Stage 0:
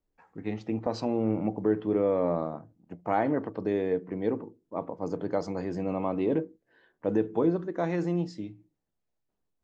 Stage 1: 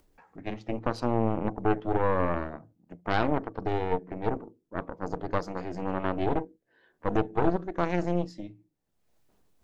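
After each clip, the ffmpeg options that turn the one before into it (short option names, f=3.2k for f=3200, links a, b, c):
-af "acompressor=mode=upward:threshold=-48dB:ratio=2.5,aeval=exprs='0.211*(cos(1*acos(clip(val(0)/0.211,-1,1)))-cos(1*PI/2))+0.0944*(cos(4*acos(clip(val(0)/0.211,-1,1)))-cos(4*PI/2))':c=same,volume=-2.5dB"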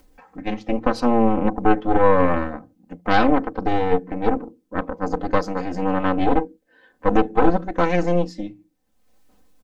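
-af "aecho=1:1:3.9:0.91,volume=6.5dB"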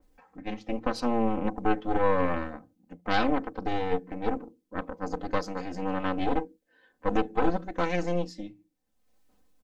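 -af "adynamicequalizer=threshold=0.02:dfrequency=2100:dqfactor=0.7:tfrequency=2100:tqfactor=0.7:attack=5:release=100:ratio=0.375:range=3:mode=boostabove:tftype=highshelf,volume=-9dB"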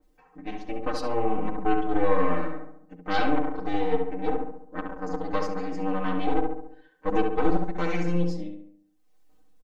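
-filter_complex "[0:a]aecho=1:1:6.5:0.99,asplit=2[a][b];[b]adelay=69,lowpass=f=2k:p=1,volume=-3.5dB,asplit=2[c][d];[d]adelay=69,lowpass=f=2k:p=1,volume=0.54,asplit=2[e][f];[f]adelay=69,lowpass=f=2k:p=1,volume=0.54,asplit=2[g][h];[h]adelay=69,lowpass=f=2k:p=1,volume=0.54,asplit=2[i][j];[j]adelay=69,lowpass=f=2k:p=1,volume=0.54,asplit=2[k][l];[l]adelay=69,lowpass=f=2k:p=1,volume=0.54,asplit=2[m][n];[n]adelay=69,lowpass=f=2k:p=1,volume=0.54[o];[c][e][g][i][k][m][o]amix=inputs=7:normalize=0[p];[a][p]amix=inputs=2:normalize=0,volume=-4dB"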